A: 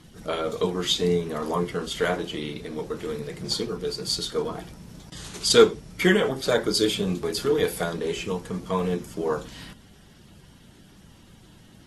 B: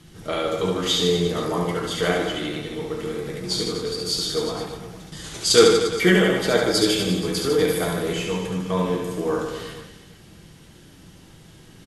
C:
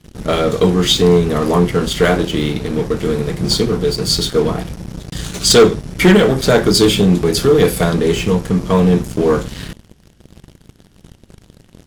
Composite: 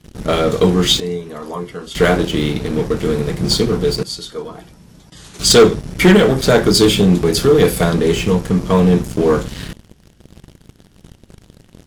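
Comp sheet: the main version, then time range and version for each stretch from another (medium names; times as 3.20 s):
C
1.00–1.95 s: from A
4.03–5.39 s: from A
not used: B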